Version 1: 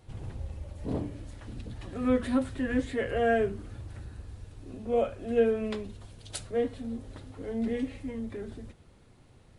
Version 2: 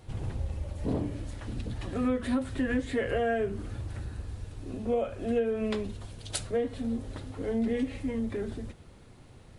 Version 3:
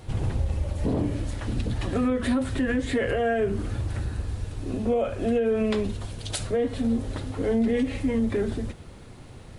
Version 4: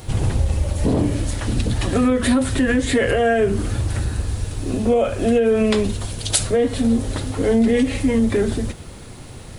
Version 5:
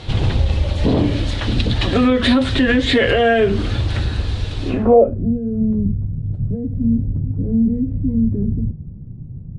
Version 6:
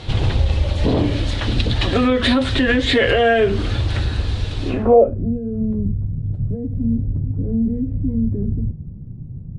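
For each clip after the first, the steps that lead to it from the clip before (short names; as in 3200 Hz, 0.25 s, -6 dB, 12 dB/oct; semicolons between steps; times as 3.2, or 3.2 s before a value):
compressor 6:1, threshold -30 dBFS, peak gain reduction 11.5 dB; gain +5 dB
limiter -24.5 dBFS, peak gain reduction 8 dB; gain +8 dB
high shelf 5300 Hz +10.5 dB; gain +7 dB
low-pass sweep 3700 Hz -> 160 Hz, 4.67–5.21; gain +2.5 dB
dynamic EQ 200 Hz, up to -4 dB, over -26 dBFS, Q 1.4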